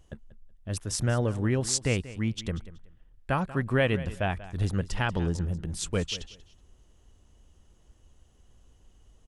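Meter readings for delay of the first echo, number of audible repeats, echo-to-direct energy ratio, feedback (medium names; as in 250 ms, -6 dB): 187 ms, 2, -16.5 dB, 21%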